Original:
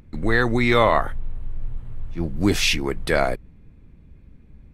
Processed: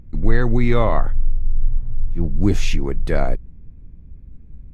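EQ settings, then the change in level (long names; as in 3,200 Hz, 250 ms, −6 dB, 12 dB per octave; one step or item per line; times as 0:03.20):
spectral tilt −3 dB per octave
parametric band 6,700 Hz +8.5 dB 0.22 octaves
high-shelf EQ 8,600 Hz +4 dB
−5.0 dB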